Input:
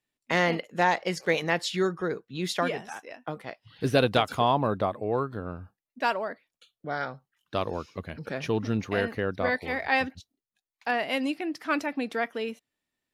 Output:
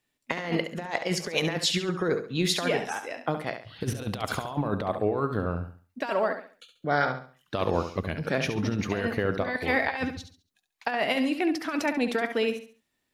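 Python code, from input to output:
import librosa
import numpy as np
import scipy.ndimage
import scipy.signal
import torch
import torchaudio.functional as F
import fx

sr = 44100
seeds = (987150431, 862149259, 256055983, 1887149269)

p1 = fx.over_compress(x, sr, threshold_db=-29.0, ratio=-0.5)
p2 = p1 + fx.echo_feedback(p1, sr, ms=69, feedback_pct=32, wet_db=-9, dry=0)
y = p2 * 10.0 ** (3.0 / 20.0)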